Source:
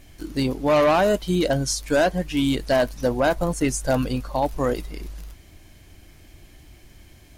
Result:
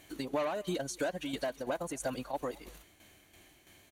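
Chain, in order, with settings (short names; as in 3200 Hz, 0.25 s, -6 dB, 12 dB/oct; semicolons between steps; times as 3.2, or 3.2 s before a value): HPF 410 Hz 6 dB/oct; notch 5100 Hz, Q 5.2; compressor 4:1, threshold -30 dBFS, peak gain reduction 11.5 dB; time stretch by phase-locked vocoder 0.53×; tremolo saw down 3 Hz, depth 60%; speakerphone echo 0.22 s, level -22 dB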